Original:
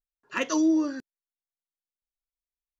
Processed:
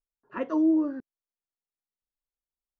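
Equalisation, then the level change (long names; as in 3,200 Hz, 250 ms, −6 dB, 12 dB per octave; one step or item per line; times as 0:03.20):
low-pass filter 1,000 Hz 12 dB per octave
0.0 dB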